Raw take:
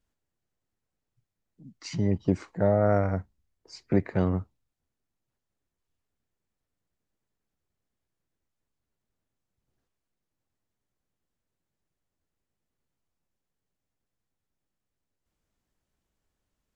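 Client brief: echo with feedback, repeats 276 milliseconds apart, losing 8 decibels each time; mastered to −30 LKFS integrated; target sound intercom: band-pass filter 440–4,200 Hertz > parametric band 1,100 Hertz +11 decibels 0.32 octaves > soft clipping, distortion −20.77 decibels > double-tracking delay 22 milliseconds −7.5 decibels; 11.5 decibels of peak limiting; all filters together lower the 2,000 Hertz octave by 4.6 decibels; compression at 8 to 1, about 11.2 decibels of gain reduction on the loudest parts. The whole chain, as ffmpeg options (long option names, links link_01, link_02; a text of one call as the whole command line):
ffmpeg -i in.wav -filter_complex "[0:a]equalizer=frequency=2000:width_type=o:gain=-8.5,acompressor=threshold=-29dB:ratio=8,alimiter=level_in=5.5dB:limit=-24dB:level=0:latency=1,volume=-5.5dB,highpass=440,lowpass=4200,equalizer=frequency=1100:width_type=o:width=0.32:gain=11,aecho=1:1:276|552|828|1104|1380:0.398|0.159|0.0637|0.0255|0.0102,asoftclip=threshold=-34dB,asplit=2[link_01][link_02];[link_02]adelay=22,volume=-7.5dB[link_03];[link_01][link_03]amix=inputs=2:normalize=0,volume=18dB" out.wav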